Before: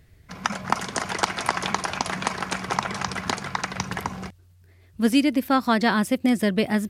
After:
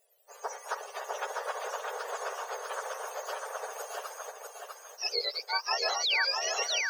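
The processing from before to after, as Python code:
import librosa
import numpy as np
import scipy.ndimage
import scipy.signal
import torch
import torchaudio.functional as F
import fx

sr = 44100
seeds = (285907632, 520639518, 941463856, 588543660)

p1 = fx.octave_mirror(x, sr, pivot_hz=1100.0)
p2 = fx.spec_paint(p1, sr, seeds[0], shape='fall', start_s=6.03, length_s=0.22, low_hz=1400.0, high_hz=4700.0, level_db=-21.0)
p3 = fx.brickwall_highpass(p2, sr, low_hz=400.0)
p4 = p3 + fx.echo_feedback(p3, sr, ms=650, feedback_pct=29, wet_db=-3.5, dry=0)
y = p4 * 10.0 ** (-7.0 / 20.0)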